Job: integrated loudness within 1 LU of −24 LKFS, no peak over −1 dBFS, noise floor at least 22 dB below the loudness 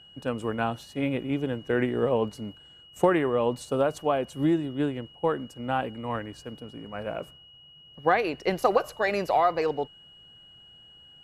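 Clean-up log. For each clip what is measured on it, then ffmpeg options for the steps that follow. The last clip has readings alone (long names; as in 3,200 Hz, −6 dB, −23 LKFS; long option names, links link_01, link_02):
interfering tone 2,900 Hz; level of the tone −50 dBFS; integrated loudness −27.5 LKFS; sample peak −8.5 dBFS; target loudness −24.0 LKFS
→ -af "bandreject=frequency=2900:width=30"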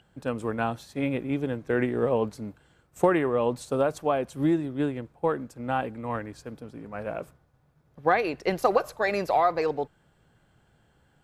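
interfering tone none found; integrated loudness −27.5 LKFS; sample peak −8.5 dBFS; target loudness −24.0 LKFS
→ -af "volume=3.5dB"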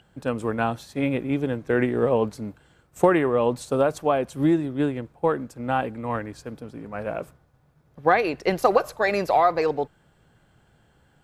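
integrated loudness −24.0 LKFS; sample peak −5.0 dBFS; background noise floor −62 dBFS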